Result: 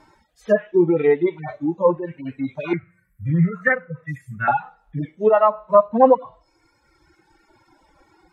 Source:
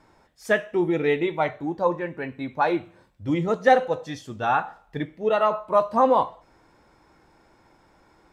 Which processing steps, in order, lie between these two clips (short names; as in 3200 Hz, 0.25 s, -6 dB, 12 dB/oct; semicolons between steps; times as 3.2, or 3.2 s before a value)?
median-filter separation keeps harmonic; reverb removal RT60 1.7 s; treble ducked by the level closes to 1400 Hz, closed at -20 dBFS; 2.73–4.48 EQ curve 110 Hz 0 dB, 170 Hz +6 dB, 290 Hz -13 dB, 560 Hz -12 dB, 830 Hz -23 dB, 1200 Hz 0 dB, 2100 Hz +11 dB, 3100 Hz -21 dB, 5000 Hz -19 dB, 12000 Hz +14 dB; gain +7.5 dB